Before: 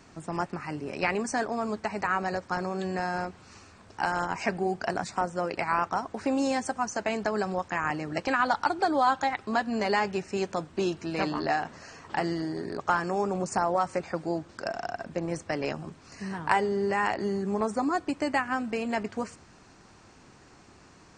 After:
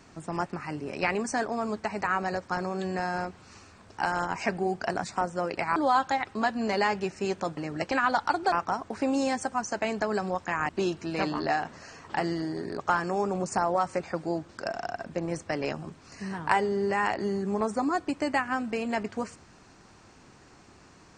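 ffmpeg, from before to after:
ffmpeg -i in.wav -filter_complex "[0:a]asplit=5[link_01][link_02][link_03][link_04][link_05];[link_01]atrim=end=5.762[link_06];[link_02]atrim=start=8.878:end=10.692[link_07];[link_03]atrim=start=7.928:end=8.882[link_08];[link_04]atrim=start=5.758:end=7.932[link_09];[link_05]atrim=start=10.688[link_10];[link_06][link_07]acrossfade=duration=0.004:curve1=hsin:curve2=hsin[link_11];[link_11][link_08]acrossfade=duration=0.004:curve1=hsin:curve2=hsin[link_12];[link_12][link_09]acrossfade=duration=0.004:curve1=hsin:curve2=hsin[link_13];[link_13][link_10]acrossfade=duration=0.004:curve1=hsin:curve2=hsin" out.wav

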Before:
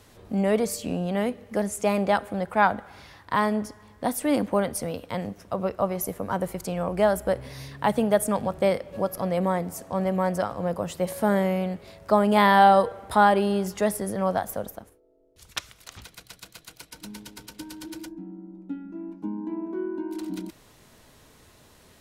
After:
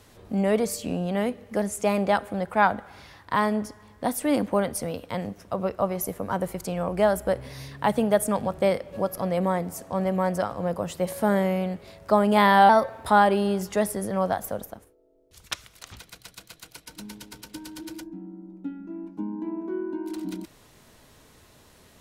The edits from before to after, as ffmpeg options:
ffmpeg -i in.wav -filter_complex "[0:a]asplit=3[link_01][link_02][link_03];[link_01]atrim=end=12.694[link_04];[link_02]atrim=start=12.69:end=13.1,asetpts=PTS-STARTPTS,asetrate=50274,aresample=44100[link_05];[link_03]atrim=start=13.096[link_06];[link_04][link_05]acrossfade=duration=0.004:curve1=hsin:curve2=hsin[link_07];[link_07][link_06]acrossfade=duration=0.004:curve1=hsin:curve2=hsin" out.wav

